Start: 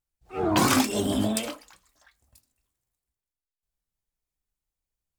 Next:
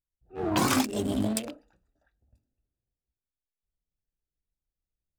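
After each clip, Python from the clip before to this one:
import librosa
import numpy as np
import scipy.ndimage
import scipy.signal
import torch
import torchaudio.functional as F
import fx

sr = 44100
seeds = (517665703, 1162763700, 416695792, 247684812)

y = fx.wiener(x, sr, points=41)
y = fx.rider(y, sr, range_db=10, speed_s=2.0)
y = y * librosa.db_to_amplitude(-1.5)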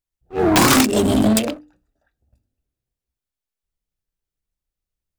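y = (np.mod(10.0 ** (15.5 / 20.0) * x + 1.0, 2.0) - 1.0) / 10.0 ** (15.5 / 20.0)
y = fx.leveller(y, sr, passes=2)
y = fx.hum_notches(y, sr, base_hz=50, count=6)
y = y * librosa.db_to_amplitude(8.0)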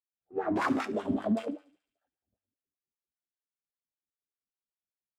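y = fx.comb_fb(x, sr, f0_hz=95.0, decay_s=0.35, harmonics='all', damping=0.0, mix_pct=70)
y = fx.wah_lfo(y, sr, hz=5.1, low_hz=210.0, high_hz=1600.0, q=2.5)
y = fx.echo_thinned(y, sr, ms=72, feedback_pct=65, hz=950.0, wet_db=-20.0)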